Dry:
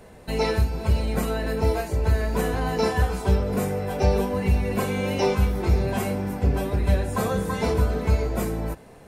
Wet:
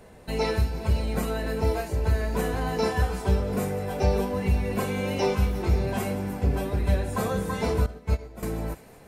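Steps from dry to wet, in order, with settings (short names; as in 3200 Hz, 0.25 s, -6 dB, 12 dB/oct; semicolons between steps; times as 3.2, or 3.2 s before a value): on a send: thin delay 0.178 s, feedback 62%, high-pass 1900 Hz, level -14.5 dB; 7.86–8.43 on the sum: upward expander 2.5:1, over -28 dBFS; gain -2.5 dB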